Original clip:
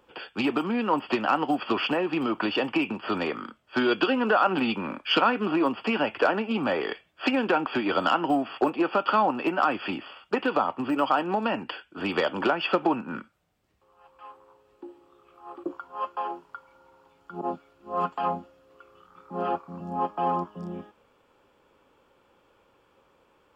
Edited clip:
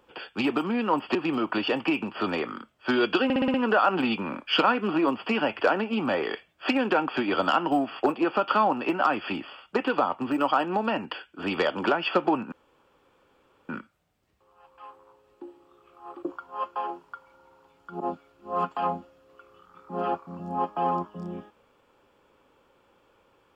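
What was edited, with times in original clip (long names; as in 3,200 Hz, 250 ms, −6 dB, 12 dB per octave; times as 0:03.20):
0:01.15–0:02.03: remove
0:04.12: stutter 0.06 s, 6 plays
0:13.10: splice in room tone 1.17 s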